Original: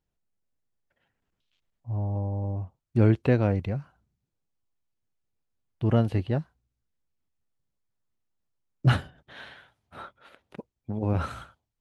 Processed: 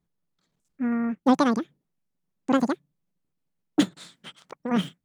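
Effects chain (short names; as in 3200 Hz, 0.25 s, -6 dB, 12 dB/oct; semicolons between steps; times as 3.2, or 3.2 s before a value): bell 73 Hz +12 dB 0.65 oct; speed mistake 33 rpm record played at 78 rpm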